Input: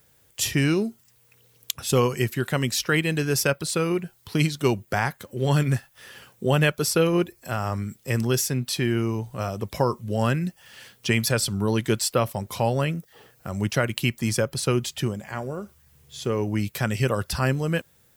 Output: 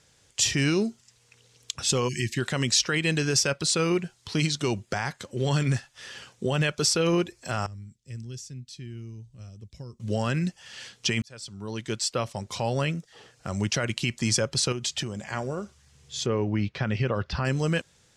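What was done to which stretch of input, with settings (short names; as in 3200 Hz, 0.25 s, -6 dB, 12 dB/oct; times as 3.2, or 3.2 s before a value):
2.08–2.37 spectral delete 370–1600 Hz
7.66–10 passive tone stack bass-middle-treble 10-0-1
11.22–14.1 fade in equal-power
14.72–15.22 compressor, threshold -28 dBFS
16.26–17.45 air absorption 300 m
whole clip: limiter -16 dBFS; LPF 7100 Hz 24 dB/oct; high shelf 3900 Hz +11 dB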